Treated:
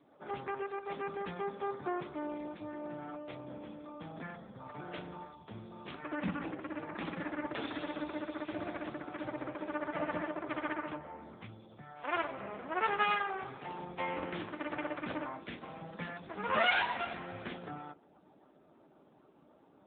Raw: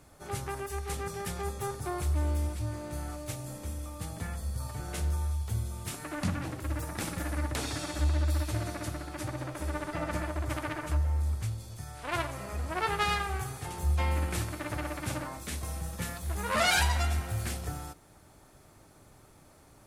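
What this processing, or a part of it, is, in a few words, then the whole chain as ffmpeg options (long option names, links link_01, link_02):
mobile call with aggressive noise cancelling: -af "highpass=frequency=180:width=0.5412,highpass=frequency=180:width=1.3066,afftdn=noise_reduction=14:noise_floor=-58" -ar 8000 -c:a libopencore_amrnb -b:a 7950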